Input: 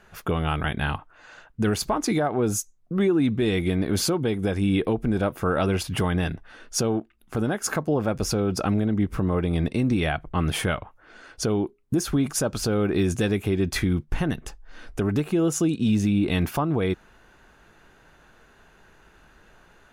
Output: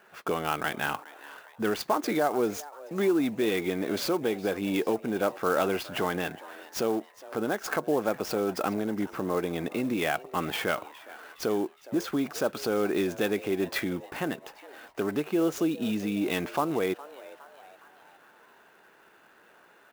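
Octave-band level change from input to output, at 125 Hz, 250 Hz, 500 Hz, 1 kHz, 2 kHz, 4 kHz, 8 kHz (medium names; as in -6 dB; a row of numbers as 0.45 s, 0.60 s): -15.0 dB, -6.0 dB, -1.5 dB, -0.5 dB, -1.5 dB, -4.5 dB, -9.5 dB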